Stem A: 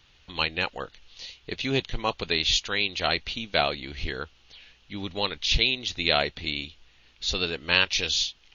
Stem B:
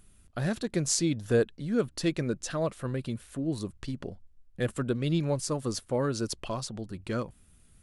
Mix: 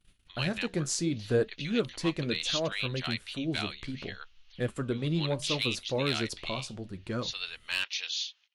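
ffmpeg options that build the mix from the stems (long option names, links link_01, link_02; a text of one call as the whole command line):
ffmpeg -i stem1.wav -i stem2.wav -filter_complex "[0:a]highpass=1300,volume=13dB,asoftclip=hard,volume=-13dB,volume=-7dB[link_01];[1:a]flanger=delay=5.5:depth=8.3:regen=-71:speed=0.68:shape=triangular,volume=2dB[link_02];[link_01][link_02]amix=inputs=2:normalize=0,agate=range=-20dB:threshold=-57dB:ratio=16:detection=peak,highshelf=frequency=9400:gain=-7" out.wav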